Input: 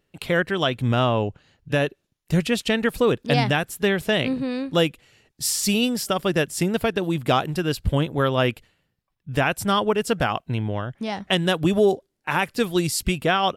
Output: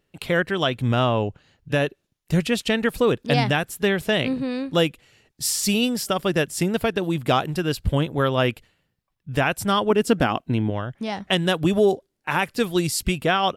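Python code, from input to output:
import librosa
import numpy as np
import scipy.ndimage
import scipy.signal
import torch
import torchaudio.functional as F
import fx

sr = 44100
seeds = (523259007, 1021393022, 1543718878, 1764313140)

y = fx.peak_eq(x, sr, hz=280.0, db=9.0, octaves=0.91, at=(9.9, 10.7))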